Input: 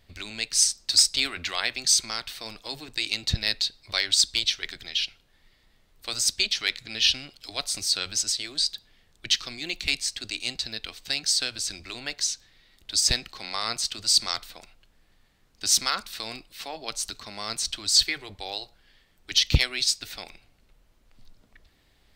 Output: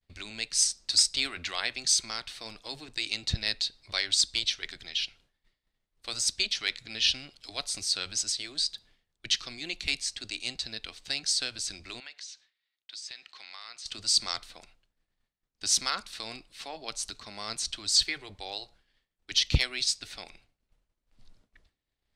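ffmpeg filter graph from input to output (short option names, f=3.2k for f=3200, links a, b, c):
-filter_complex "[0:a]asettb=1/sr,asplit=3[a][b][c];[a]atrim=end=12.004[d];[b]atrim=start=12:end=13.86,asetpts=PTS-STARTPTS,afade=t=in:d=0.004:c=qsin,afade=t=out:st=1.856:d=0.004:c=qsin,bandpass=f=2.5k:t=q:w=0.76,acompressor=threshold=-39dB:ratio=2.5:attack=3.2:release=140:knee=1:detection=peak[e];[c]atrim=start=13.856[f];[d][e]acrossfade=d=0.004:c1=hsin:c2=qsin[g];[g][f]acrossfade=d=0.004:c1=qsin:c2=hsin,lowpass=f=11k:w=0.5412,lowpass=f=11k:w=1.3066,agate=range=-33dB:threshold=-50dB:ratio=3:detection=peak,volume=-4dB"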